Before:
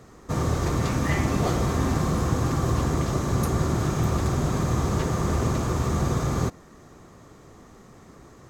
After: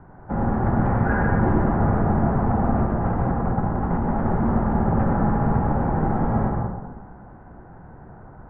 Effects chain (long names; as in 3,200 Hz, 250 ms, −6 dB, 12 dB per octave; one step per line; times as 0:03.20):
0:02.84–0:04.09: compressor whose output falls as the input rises −26 dBFS, ratio −0.5
dense smooth reverb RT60 1.3 s, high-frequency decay 0.5×, pre-delay 75 ms, DRR 0 dB
single-sideband voice off tune −370 Hz 170–2,000 Hz
level +5 dB